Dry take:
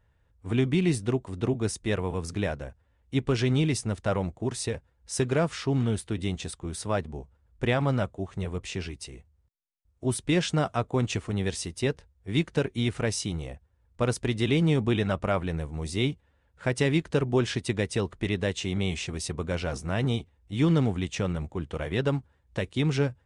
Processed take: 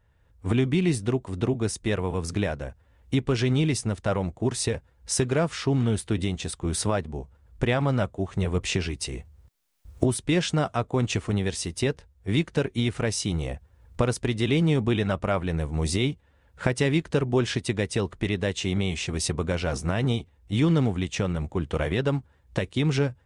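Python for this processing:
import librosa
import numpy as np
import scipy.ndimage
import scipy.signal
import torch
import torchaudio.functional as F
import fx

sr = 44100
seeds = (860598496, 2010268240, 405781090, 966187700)

y = fx.recorder_agc(x, sr, target_db=-16.5, rise_db_per_s=15.0, max_gain_db=30)
y = y * 10.0 ** (1.0 / 20.0)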